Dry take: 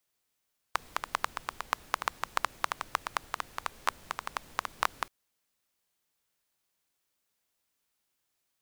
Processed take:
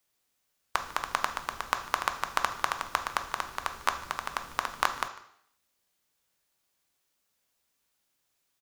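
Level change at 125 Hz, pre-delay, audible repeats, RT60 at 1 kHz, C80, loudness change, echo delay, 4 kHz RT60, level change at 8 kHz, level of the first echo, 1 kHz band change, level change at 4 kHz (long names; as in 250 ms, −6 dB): +4.0 dB, 3 ms, 1, 0.70 s, 13.5 dB, +3.5 dB, 149 ms, 0.70 s, +3.5 dB, −20.5 dB, +3.5 dB, +3.5 dB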